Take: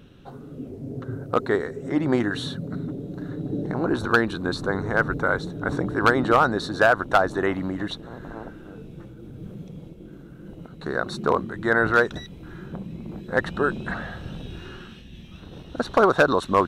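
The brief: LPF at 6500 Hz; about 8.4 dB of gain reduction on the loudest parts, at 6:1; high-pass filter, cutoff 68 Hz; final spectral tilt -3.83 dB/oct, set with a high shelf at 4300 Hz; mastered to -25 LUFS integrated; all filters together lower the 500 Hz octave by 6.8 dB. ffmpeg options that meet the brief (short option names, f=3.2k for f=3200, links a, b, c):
-af "highpass=68,lowpass=6.5k,equalizer=f=500:t=o:g=-9,highshelf=f=4.3k:g=7.5,acompressor=threshold=-24dB:ratio=6,volume=6.5dB"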